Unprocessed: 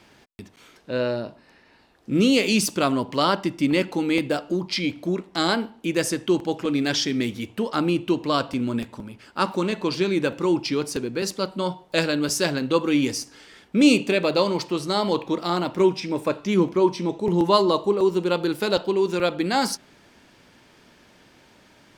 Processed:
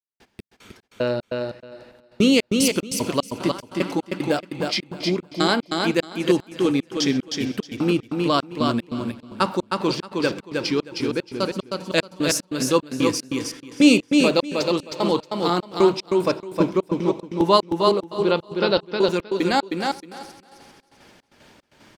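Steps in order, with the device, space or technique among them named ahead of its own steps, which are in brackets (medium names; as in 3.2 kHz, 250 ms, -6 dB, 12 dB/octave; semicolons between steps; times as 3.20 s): 18.21–18.93 s: steep low-pass 5.6 kHz 96 dB/octave; multi-head delay 130 ms, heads first and second, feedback 59%, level -21 dB; trance gate with a delay (trance gate ".x.x.x.x" 75 bpm -60 dB; feedback delay 313 ms, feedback 17%, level -4 dB); trim +2 dB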